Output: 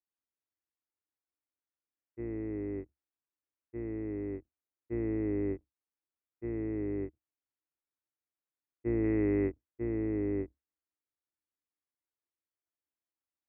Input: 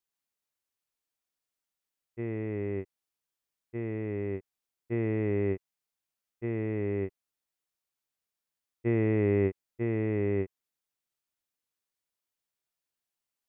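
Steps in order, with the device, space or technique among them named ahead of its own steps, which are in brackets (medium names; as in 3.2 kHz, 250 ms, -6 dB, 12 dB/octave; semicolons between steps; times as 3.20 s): 9.04–9.50 s: peaking EQ 2.4 kHz +5 dB 2.7 oct; sub-octave bass pedal (octave divider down 2 oct, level -3 dB; cabinet simulation 62–2200 Hz, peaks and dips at 68 Hz +5 dB, 170 Hz -7 dB, 310 Hz +10 dB); trim -7.5 dB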